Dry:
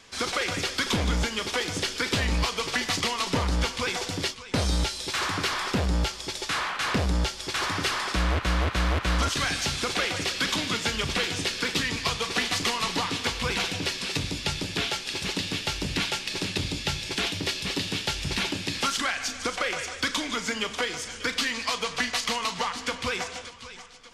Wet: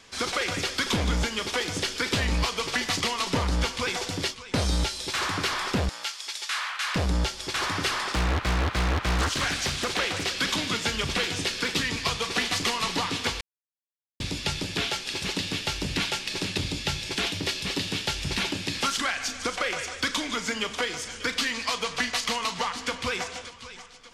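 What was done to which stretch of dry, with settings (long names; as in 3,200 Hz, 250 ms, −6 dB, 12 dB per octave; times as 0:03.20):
0:05.89–0:06.96: high-pass filter 1,200 Hz
0:08.03–0:10.38: highs frequency-modulated by the lows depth 0.91 ms
0:13.41–0:14.20: silence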